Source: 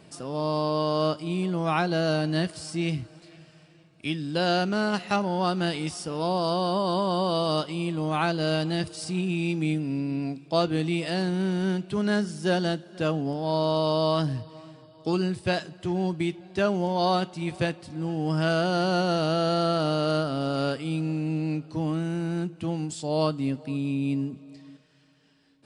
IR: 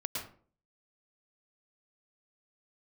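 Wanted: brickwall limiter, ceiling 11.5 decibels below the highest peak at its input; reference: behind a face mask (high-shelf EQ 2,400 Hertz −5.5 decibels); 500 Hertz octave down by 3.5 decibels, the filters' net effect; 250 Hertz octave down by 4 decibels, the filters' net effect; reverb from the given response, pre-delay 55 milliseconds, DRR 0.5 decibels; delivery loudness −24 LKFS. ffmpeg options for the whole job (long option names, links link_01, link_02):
-filter_complex "[0:a]equalizer=frequency=250:width_type=o:gain=-5.5,equalizer=frequency=500:width_type=o:gain=-3,alimiter=limit=-23dB:level=0:latency=1,asplit=2[link_01][link_02];[1:a]atrim=start_sample=2205,adelay=55[link_03];[link_02][link_03]afir=irnorm=-1:irlink=0,volume=-3dB[link_04];[link_01][link_04]amix=inputs=2:normalize=0,highshelf=frequency=2400:gain=-5.5,volume=6dB"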